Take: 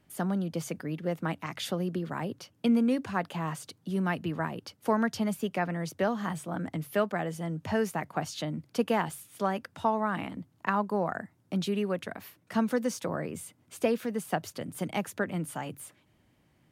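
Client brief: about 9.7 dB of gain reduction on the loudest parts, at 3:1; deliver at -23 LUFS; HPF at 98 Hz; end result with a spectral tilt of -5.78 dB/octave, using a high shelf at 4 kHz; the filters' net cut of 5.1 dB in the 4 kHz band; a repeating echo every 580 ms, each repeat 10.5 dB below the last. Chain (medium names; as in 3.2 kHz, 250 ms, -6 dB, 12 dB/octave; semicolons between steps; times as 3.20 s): high-pass 98 Hz; treble shelf 4 kHz -3.5 dB; peaking EQ 4 kHz -5 dB; compression 3:1, threshold -34 dBFS; feedback delay 580 ms, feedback 30%, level -10.5 dB; trim +15 dB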